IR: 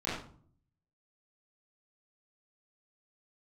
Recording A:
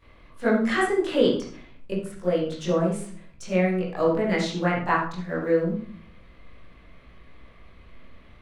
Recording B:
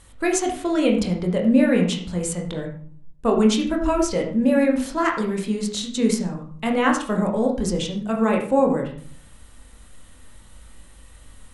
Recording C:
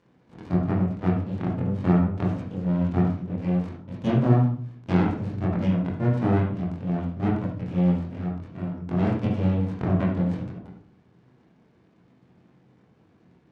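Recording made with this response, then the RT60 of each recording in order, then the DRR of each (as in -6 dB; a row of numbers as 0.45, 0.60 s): A; 0.50, 0.50, 0.50 s; -12.0, 0.5, -5.5 dB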